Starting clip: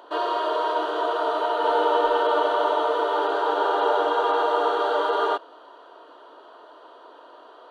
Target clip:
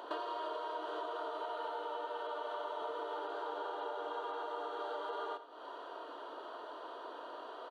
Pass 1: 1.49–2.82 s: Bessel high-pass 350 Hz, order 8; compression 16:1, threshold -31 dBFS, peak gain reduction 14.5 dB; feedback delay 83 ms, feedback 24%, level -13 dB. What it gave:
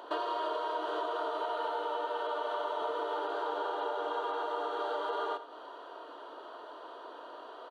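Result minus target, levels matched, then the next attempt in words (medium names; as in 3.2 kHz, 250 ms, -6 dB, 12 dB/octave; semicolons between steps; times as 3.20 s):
compression: peak gain reduction -6 dB
1.49–2.82 s: Bessel high-pass 350 Hz, order 8; compression 16:1, threshold -37.5 dBFS, peak gain reduction 20.5 dB; feedback delay 83 ms, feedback 24%, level -13 dB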